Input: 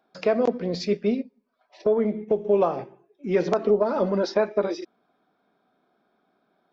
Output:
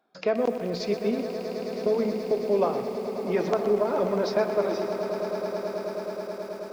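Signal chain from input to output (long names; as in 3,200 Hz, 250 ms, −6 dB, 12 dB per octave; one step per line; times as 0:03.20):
low-shelf EQ 390 Hz −2 dB
echo that builds up and dies away 107 ms, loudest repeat 8, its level −14.5 dB
feedback echo at a low word length 123 ms, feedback 55%, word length 7 bits, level −11 dB
level −2.5 dB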